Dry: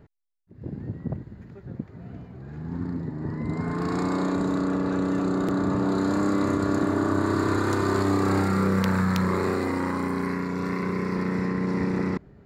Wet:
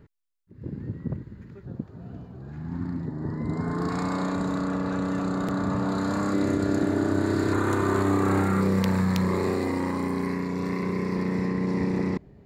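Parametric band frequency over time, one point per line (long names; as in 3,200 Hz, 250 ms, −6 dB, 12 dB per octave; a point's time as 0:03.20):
parametric band −10.5 dB 0.42 octaves
710 Hz
from 0:01.65 2,100 Hz
from 0:02.52 450 Hz
from 0:03.05 2,500 Hz
from 0:03.89 350 Hz
from 0:06.33 1,100 Hz
from 0:07.53 4,900 Hz
from 0:08.61 1,400 Hz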